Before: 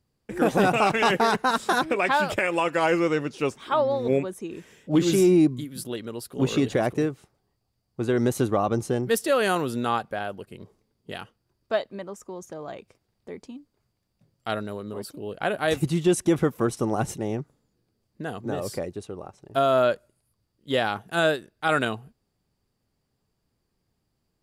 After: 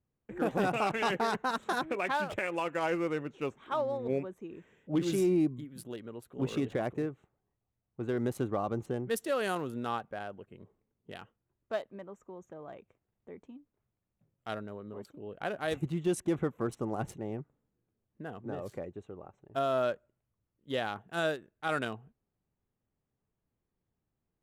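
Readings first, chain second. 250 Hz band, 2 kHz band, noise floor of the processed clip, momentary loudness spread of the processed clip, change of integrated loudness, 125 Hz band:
-9.0 dB, -9.5 dB, under -85 dBFS, 18 LU, -9.0 dB, -9.0 dB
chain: local Wiener filter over 9 samples; trim -9 dB

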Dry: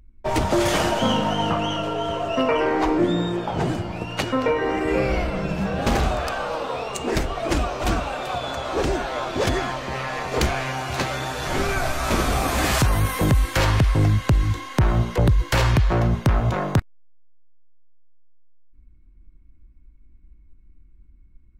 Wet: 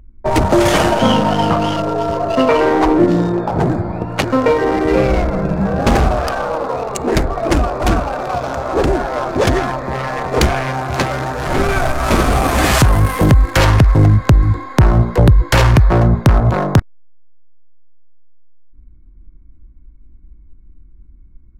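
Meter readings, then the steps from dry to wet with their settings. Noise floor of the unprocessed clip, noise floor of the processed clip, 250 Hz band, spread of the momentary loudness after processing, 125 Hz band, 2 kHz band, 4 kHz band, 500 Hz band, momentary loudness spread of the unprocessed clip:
-50 dBFS, -42 dBFS, +8.5 dB, 9 LU, +8.5 dB, +6.0 dB, +4.0 dB, +8.0 dB, 7 LU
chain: local Wiener filter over 15 samples; trim +8.5 dB

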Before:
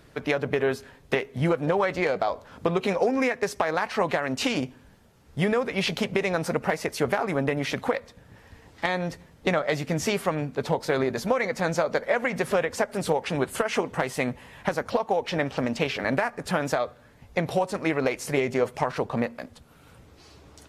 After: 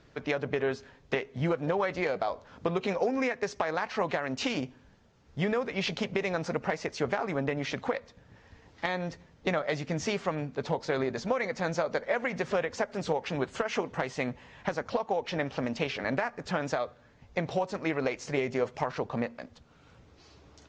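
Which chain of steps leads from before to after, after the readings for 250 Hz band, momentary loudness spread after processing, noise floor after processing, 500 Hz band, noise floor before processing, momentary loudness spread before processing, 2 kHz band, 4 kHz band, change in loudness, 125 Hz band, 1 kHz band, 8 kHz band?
-5.0 dB, 5 LU, -59 dBFS, -5.0 dB, -54 dBFS, 5 LU, -5.0 dB, -5.0 dB, -5.0 dB, -5.0 dB, -5.0 dB, -8.0 dB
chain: steep low-pass 7 kHz 48 dB/octave; trim -5 dB

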